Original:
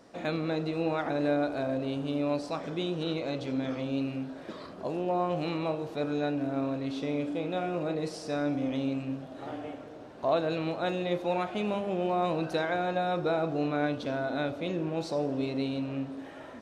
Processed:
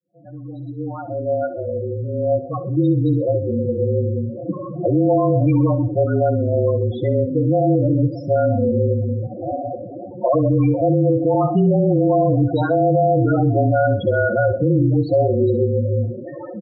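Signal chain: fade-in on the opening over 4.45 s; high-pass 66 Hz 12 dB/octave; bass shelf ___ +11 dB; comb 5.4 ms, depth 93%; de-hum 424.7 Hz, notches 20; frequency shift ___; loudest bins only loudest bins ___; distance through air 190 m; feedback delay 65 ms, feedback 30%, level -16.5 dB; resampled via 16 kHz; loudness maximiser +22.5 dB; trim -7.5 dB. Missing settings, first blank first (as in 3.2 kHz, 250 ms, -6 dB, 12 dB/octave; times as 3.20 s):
90 Hz, -30 Hz, 8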